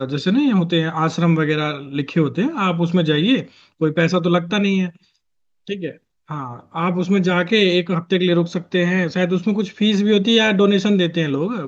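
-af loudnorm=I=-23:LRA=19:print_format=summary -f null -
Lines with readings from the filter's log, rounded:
Input Integrated:    -18.0 LUFS
Input True Peak:      -3.0 dBTP
Input LRA:             3.5 LU
Input Threshold:     -28.4 LUFS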